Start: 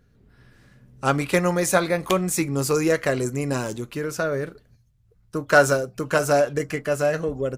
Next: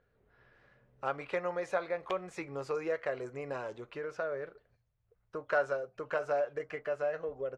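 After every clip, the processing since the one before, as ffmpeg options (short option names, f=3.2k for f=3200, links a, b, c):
-af "lowpass=2.5k,lowshelf=f=360:t=q:w=1.5:g=-10.5,acompressor=threshold=-38dB:ratio=1.5,volume=-5.5dB"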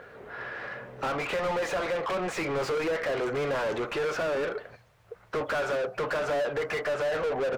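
-filter_complex "[0:a]alimiter=level_in=3.5dB:limit=-24dB:level=0:latency=1:release=266,volume=-3.5dB,asplit=2[a][b];[b]highpass=f=720:p=1,volume=33dB,asoftclip=type=tanh:threshold=-27.5dB[c];[a][c]amix=inputs=2:normalize=0,lowpass=f=1.9k:p=1,volume=-6dB,volume=5.5dB"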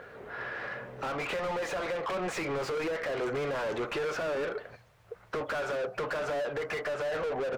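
-af "alimiter=level_in=3dB:limit=-24dB:level=0:latency=1:release=310,volume=-3dB"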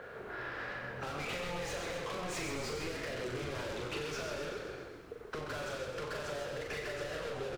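-filter_complex "[0:a]asplit=2[a][b];[b]aecho=0:1:40|92|159.6|247.5|361.7:0.631|0.398|0.251|0.158|0.1[c];[a][c]amix=inputs=2:normalize=0,acrossover=split=170|3000[d][e][f];[e]acompressor=threshold=-40dB:ratio=4[g];[d][g][f]amix=inputs=3:normalize=0,asplit=2[h][i];[i]asplit=8[j][k][l][m][n][o][p][q];[j]adelay=131,afreqshift=-45,volume=-6dB[r];[k]adelay=262,afreqshift=-90,volume=-10.7dB[s];[l]adelay=393,afreqshift=-135,volume=-15.5dB[t];[m]adelay=524,afreqshift=-180,volume=-20.2dB[u];[n]adelay=655,afreqshift=-225,volume=-24.9dB[v];[o]adelay=786,afreqshift=-270,volume=-29.7dB[w];[p]adelay=917,afreqshift=-315,volume=-34.4dB[x];[q]adelay=1048,afreqshift=-360,volume=-39.1dB[y];[r][s][t][u][v][w][x][y]amix=inputs=8:normalize=0[z];[h][z]amix=inputs=2:normalize=0,volume=-1.5dB"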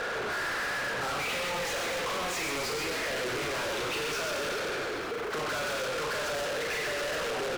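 -filter_complex "[0:a]asplit=2[a][b];[b]highpass=f=720:p=1,volume=34dB,asoftclip=type=tanh:threshold=-26dB[c];[a][c]amix=inputs=2:normalize=0,lowpass=f=5.8k:p=1,volume=-6dB"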